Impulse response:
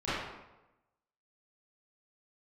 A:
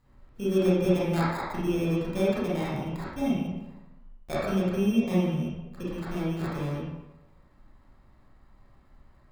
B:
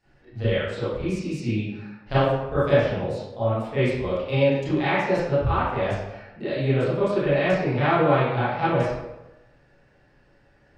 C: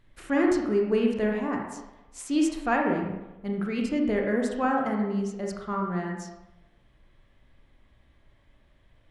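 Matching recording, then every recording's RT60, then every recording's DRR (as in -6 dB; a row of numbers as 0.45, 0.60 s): B; 1.0, 1.0, 1.0 s; -9.5, -15.0, 0.0 dB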